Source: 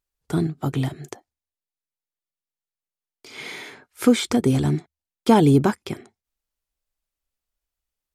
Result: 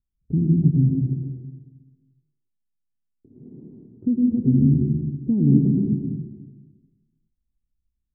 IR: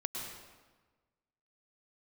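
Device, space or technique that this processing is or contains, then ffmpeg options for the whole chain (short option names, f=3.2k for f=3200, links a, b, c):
club heard from the street: -filter_complex "[0:a]alimiter=limit=-15dB:level=0:latency=1:release=497,lowpass=f=250:w=0.5412,lowpass=f=250:w=1.3066[a];[1:a]atrim=start_sample=2205[b];[a][b]afir=irnorm=-1:irlink=0,volume=8.5dB"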